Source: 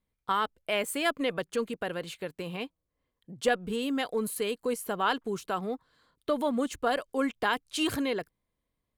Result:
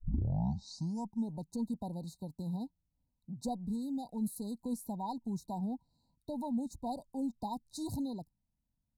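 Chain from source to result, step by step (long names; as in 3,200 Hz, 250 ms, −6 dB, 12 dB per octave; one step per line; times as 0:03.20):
turntable start at the beginning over 1.46 s
drawn EQ curve 230 Hz 0 dB, 440 Hz −22 dB, 820 Hz −7 dB, 3,500 Hz −13 dB, 5,400 Hz −11 dB
speech leveller within 3 dB 0.5 s
linear-phase brick-wall band-stop 1,000–3,700 Hz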